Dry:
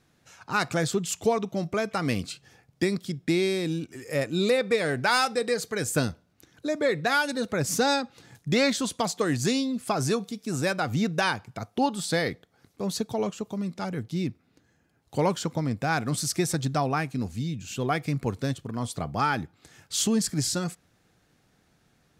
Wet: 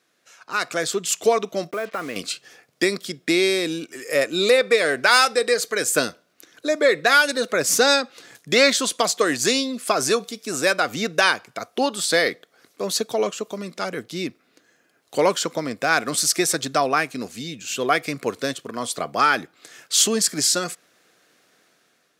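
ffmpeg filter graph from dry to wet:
ffmpeg -i in.wav -filter_complex "[0:a]asettb=1/sr,asplit=3[link_01][link_02][link_03];[link_01]atrim=end=1.714[link_04];[link_02]atrim=start=1.71:end=2.16,asetpts=PTS-STARTPTS,afade=type=in:duration=0.004:curve=qsin,afade=type=out:start_time=0.446:duration=0.004:curve=qsin,lowpass=2100,acompressor=threshold=-30dB:ratio=4:attack=3.2:release=140:knee=1:detection=peak,acrusher=bits=7:mix=0:aa=0.5[link_05];[link_03]atrim=start=2.156[link_06];[link_04][link_05]acrossfade=duration=0.004:curve1=hsin:curve2=qsin[link_07];[link_07][link_06]acrossfade=duration=0.004:curve1=qsin:curve2=hsin,highpass=430,equalizer=frequency=850:width_type=o:width=0.3:gain=-9.5,dynaudnorm=framelen=600:gausssize=3:maxgain=8dB,volume=2dB" out.wav

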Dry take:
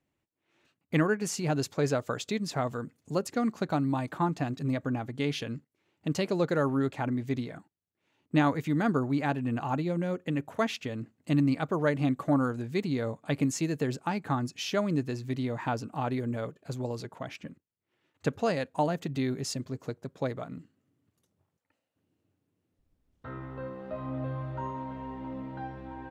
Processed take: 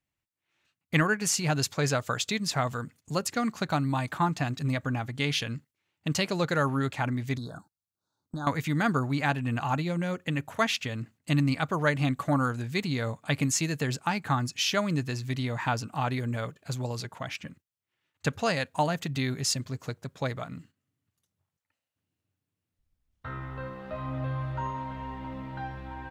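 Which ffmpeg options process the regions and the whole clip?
ffmpeg -i in.wav -filter_complex "[0:a]asettb=1/sr,asplit=3[link_01][link_02][link_03];[link_01]atrim=end=7.374[link_04];[link_02]atrim=start=7.37:end=8.47,asetpts=PTS-STARTPTS,afade=type=in:duration=0.004:curve=qsin,afade=type=out:start_time=1.096:duration=0.004:curve=qsin,acompressor=threshold=-33dB:ratio=4:attack=3.2:release=140:knee=1:detection=peak,asuperstop=centerf=2400:order=12:qfactor=1.1[link_05];[link_03]atrim=start=8.466[link_06];[link_04][link_05]acrossfade=duration=0.004:curve1=hsin:curve2=qsin[link_07];[link_07][link_06]acrossfade=duration=0.004:curve1=qsin:curve2=hsin,agate=range=-10dB:threshold=-54dB:ratio=16:detection=peak,equalizer=frequency=360:width=0.53:gain=-12,volume=8.5dB" out.wav

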